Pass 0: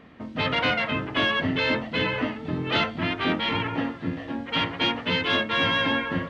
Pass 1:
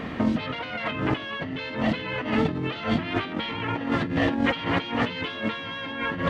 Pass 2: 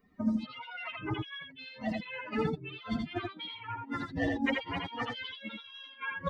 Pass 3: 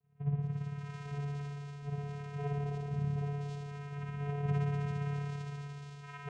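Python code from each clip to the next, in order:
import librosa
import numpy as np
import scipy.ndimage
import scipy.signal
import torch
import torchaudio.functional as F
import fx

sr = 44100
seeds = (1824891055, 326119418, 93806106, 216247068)

y1 = fx.over_compress(x, sr, threshold_db=-37.0, ratio=-1.0)
y1 = y1 * librosa.db_to_amplitude(8.0)
y2 = fx.bin_expand(y1, sr, power=3.0)
y2 = y2 + 10.0 ** (-3.5 / 20.0) * np.pad(y2, (int(82 * sr / 1000.0), 0))[:len(y2)]
y2 = y2 * librosa.db_to_amplitude(-2.5)
y3 = fx.env_lowpass_down(y2, sr, base_hz=2400.0, full_db=-26.5)
y3 = fx.rev_spring(y3, sr, rt60_s=3.2, pass_ms=(56,), chirp_ms=60, drr_db=-8.0)
y3 = fx.vocoder(y3, sr, bands=4, carrier='square', carrier_hz=143.0)
y3 = y3 * librosa.db_to_amplitude(-7.5)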